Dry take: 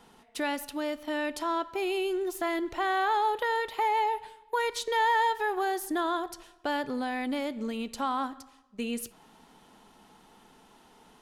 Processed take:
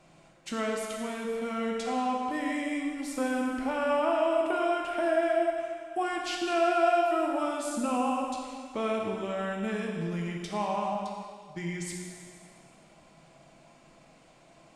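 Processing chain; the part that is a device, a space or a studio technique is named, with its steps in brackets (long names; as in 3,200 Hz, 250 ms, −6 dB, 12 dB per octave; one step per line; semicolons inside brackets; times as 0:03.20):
slowed and reverbed (speed change −24%; convolution reverb RT60 2.0 s, pre-delay 9 ms, DRR −1 dB)
level −3 dB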